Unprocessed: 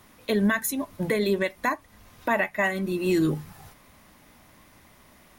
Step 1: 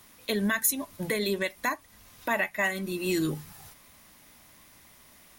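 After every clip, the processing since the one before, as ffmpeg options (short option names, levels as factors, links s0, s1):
-af "highshelf=f=2500:g=10.5,volume=0.531"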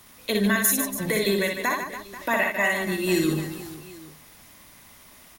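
-af "aecho=1:1:60|150|285|487.5|791.2:0.631|0.398|0.251|0.158|0.1,volume=1.41"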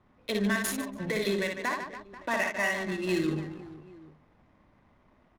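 -af "adynamicsmooth=sensitivity=5.5:basefreq=1000,volume=0.531"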